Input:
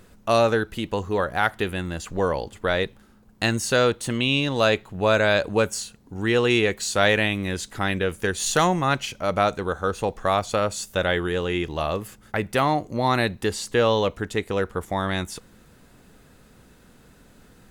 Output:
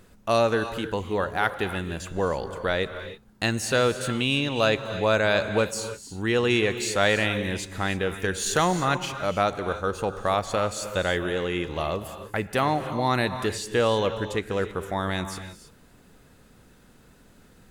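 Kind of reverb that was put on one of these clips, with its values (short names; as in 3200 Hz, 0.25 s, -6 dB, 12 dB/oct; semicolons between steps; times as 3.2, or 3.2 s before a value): non-linear reverb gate 0.34 s rising, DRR 10 dB; gain -2.5 dB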